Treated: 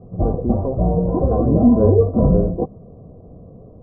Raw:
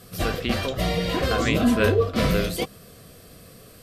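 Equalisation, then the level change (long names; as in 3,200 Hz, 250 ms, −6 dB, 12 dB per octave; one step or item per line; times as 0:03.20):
Butterworth low-pass 940 Hz 48 dB per octave
low-shelf EQ 400 Hz +5.5 dB
+3.5 dB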